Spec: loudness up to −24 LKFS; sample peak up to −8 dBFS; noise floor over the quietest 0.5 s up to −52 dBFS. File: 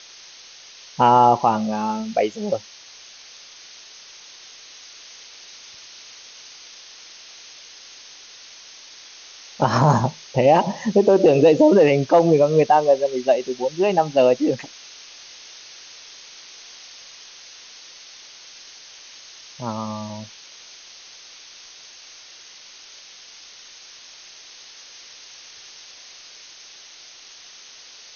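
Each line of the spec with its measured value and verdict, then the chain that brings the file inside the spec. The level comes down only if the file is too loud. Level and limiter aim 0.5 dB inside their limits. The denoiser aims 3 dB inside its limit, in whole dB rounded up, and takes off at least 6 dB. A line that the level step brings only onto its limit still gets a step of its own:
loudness −18.0 LKFS: out of spec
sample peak −5.0 dBFS: out of spec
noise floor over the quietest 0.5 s −44 dBFS: out of spec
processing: broadband denoise 6 dB, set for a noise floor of −44 dBFS
level −6.5 dB

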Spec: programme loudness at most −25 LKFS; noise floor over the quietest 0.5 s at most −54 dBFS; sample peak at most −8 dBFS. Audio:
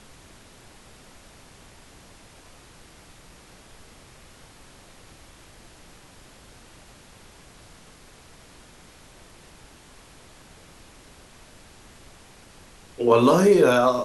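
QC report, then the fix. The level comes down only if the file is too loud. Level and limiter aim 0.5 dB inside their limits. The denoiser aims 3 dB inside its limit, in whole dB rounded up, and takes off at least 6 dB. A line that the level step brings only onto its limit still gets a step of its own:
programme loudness −18.0 LKFS: out of spec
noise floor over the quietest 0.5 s −50 dBFS: out of spec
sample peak −5.0 dBFS: out of spec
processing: level −7.5 dB

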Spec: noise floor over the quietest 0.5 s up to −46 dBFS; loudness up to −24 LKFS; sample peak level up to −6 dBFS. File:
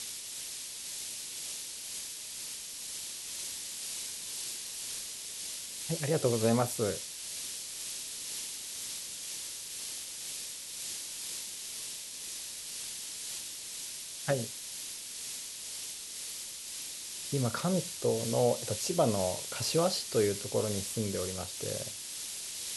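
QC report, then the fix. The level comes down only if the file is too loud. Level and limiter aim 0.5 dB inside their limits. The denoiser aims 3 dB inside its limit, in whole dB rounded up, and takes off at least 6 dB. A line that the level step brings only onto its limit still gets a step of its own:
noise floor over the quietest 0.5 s −42 dBFS: out of spec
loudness −34.5 LKFS: in spec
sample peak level −14.5 dBFS: in spec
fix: broadband denoise 7 dB, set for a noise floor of −42 dBFS

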